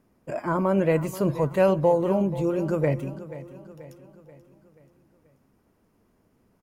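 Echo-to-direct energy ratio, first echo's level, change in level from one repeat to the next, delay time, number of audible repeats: -14.0 dB, -15.5 dB, -6.0 dB, 0.483 s, 4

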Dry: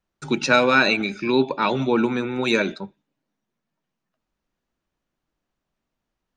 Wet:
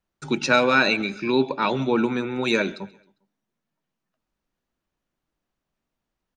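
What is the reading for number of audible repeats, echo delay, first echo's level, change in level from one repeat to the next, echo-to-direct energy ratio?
2, 0.134 s, -23.0 dB, -6.5 dB, -22.0 dB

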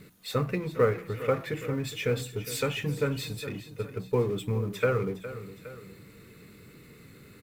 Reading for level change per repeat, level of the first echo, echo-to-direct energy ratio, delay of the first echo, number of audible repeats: -5.0 dB, -14.0 dB, -13.0 dB, 0.411 s, 2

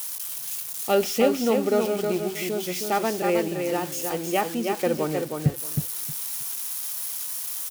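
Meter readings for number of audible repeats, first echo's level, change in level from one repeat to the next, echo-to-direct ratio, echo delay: 3, -5.0 dB, -14.5 dB, -5.0 dB, 0.315 s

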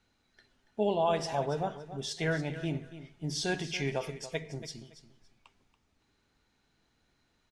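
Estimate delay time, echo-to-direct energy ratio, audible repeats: 0.282 s, -13.5 dB, 2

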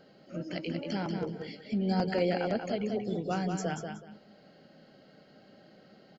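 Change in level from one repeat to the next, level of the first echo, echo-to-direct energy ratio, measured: -13.0 dB, -6.0 dB, -6.0 dB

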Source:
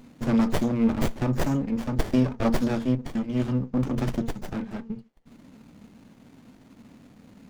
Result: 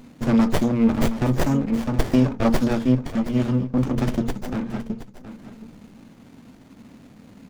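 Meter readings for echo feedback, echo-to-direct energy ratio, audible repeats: 16%, -13.0 dB, 2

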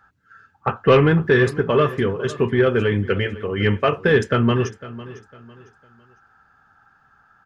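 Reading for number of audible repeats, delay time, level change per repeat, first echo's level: 2, 0.503 s, -10.0 dB, -17.0 dB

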